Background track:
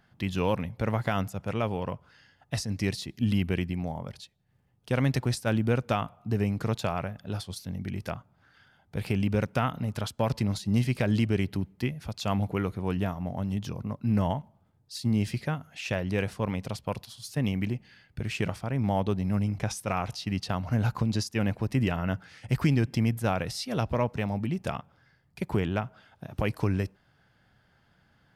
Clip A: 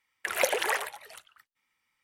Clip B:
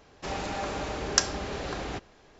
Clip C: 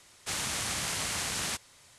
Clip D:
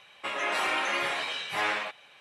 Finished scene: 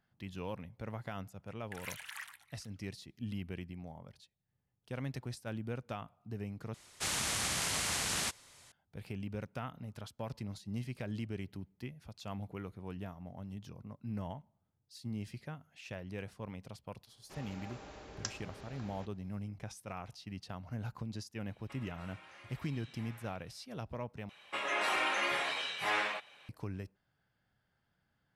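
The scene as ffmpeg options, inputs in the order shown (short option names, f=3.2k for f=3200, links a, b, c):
-filter_complex "[4:a]asplit=2[a][b];[0:a]volume=-14.5dB[c];[1:a]highpass=f=1.2k:w=0.5412,highpass=f=1.2k:w=1.3066[d];[a]acompressor=threshold=-43dB:ratio=6:attack=59:release=122:knee=1:detection=peak[e];[c]asplit=3[f][g][h];[f]atrim=end=6.744[i];[3:a]atrim=end=1.98,asetpts=PTS-STARTPTS,volume=-1.5dB[j];[g]atrim=start=8.716:end=24.294[k];[b]atrim=end=2.2,asetpts=PTS-STARTPTS,volume=-4dB[l];[h]atrim=start=26.486[m];[d]atrim=end=2.03,asetpts=PTS-STARTPTS,volume=-15.5dB,afade=t=in:d=0.004:c=hsin,afade=t=out:st=2.026:d=0.004:c=hsin,adelay=1470[n];[2:a]atrim=end=2.39,asetpts=PTS-STARTPTS,volume=-17.5dB,afade=t=in:d=0.004:c=hsin,afade=t=out:st=2.386:d=0.004:c=hsin,adelay=17070[o];[e]atrim=end=2.2,asetpts=PTS-STARTPTS,volume=-16dB,afade=t=in:d=0.004:c=hsin,afade=t=out:st=2.196:d=0.004:c=hsin,adelay=21460[p];[i][j]acrossfade=d=0.004:c1=hsin:c2=hsin[q];[q][k]acrossfade=d=0.004:c1=hsin:c2=hsin[r];[r][l]acrossfade=d=0.004:c1=hsin:c2=hsin[s];[s][m]acrossfade=d=0.004:c1=hsin:c2=hsin[t];[t][n][o][p]amix=inputs=4:normalize=0"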